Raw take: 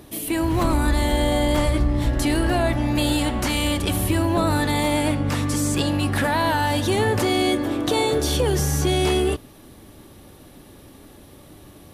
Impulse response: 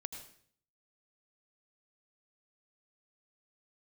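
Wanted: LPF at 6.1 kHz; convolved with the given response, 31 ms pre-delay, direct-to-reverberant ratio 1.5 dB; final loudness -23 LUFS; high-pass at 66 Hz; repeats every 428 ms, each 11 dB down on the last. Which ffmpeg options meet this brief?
-filter_complex "[0:a]highpass=66,lowpass=6100,aecho=1:1:428|856|1284:0.282|0.0789|0.0221,asplit=2[s0][s1];[1:a]atrim=start_sample=2205,adelay=31[s2];[s1][s2]afir=irnorm=-1:irlink=0,volume=1.12[s3];[s0][s3]amix=inputs=2:normalize=0,volume=0.668"

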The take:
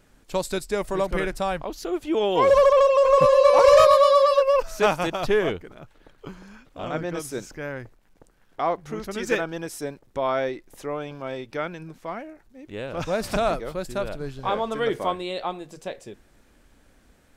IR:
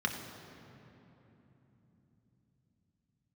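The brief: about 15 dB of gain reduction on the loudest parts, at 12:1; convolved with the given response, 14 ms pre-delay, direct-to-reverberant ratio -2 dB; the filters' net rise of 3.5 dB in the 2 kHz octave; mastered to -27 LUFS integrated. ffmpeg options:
-filter_complex "[0:a]equalizer=f=2000:t=o:g=4.5,acompressor=threshold=0.0501:ratio=12,asplit=2[s0][s1];[1:a]atrim=start_sample=2205,adelay=14[s2];[s1][s2]afir=irnorm=-1:irlink=0,volume=0.562[s3];[s0][s3]amix=inputs=2:normalize=0,volume=1.19"

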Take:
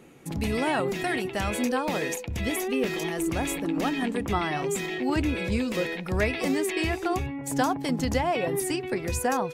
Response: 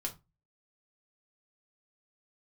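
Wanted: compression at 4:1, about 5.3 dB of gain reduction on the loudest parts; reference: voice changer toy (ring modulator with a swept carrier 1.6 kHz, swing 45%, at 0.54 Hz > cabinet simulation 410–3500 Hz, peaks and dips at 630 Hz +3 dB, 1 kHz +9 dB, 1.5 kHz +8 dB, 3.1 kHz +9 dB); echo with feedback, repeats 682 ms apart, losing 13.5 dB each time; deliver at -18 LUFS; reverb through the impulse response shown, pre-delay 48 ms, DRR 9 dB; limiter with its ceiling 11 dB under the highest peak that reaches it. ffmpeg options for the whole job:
-filter_complex "[0:a]acompressor=threshold=0.0447:ratio=4,alimiter=level_in=1.41:limit=0.0631:level=0:latency=1,volume=0.708,aecho=1:1:682|1364:0.211|0.0444,asplit=2[s0][s1];[1:a]atrim=start_sample=2205,adelay=48[s2];[s1][s2]afir=irnorm=-1:irlink=0,volume=0.335[s3];[s0][s3]amix=inputs=2:normalize=0,aeval=exprs='val(0)*sin(2*PI*1600*n/s+1600*0.45/0.54*sin(2*PI*0.54*n/s))':c=same,highpass=410,equalizer=f=630:t=q:w=4:g=3,equalizer=f=1000:t=q:w=4:g=9,equalizer=f=1500:t=q:w=4:g=8,equalizer=f=3100:t=q:w=4:g=9,lowpass=f=3500:w=0.5412,lowpass=f=3500:w=1.3066,volume=4.47"

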